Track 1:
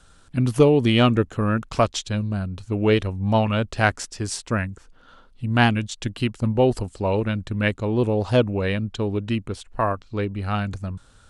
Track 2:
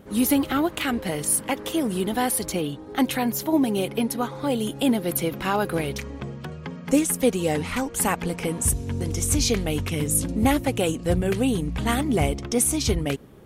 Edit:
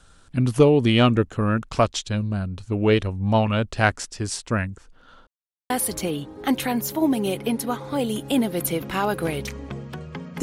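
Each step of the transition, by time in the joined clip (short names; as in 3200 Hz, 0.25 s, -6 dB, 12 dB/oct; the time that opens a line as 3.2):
track 1
5.27–5.7 mute
5.7 switch to track 2 from 2.21 s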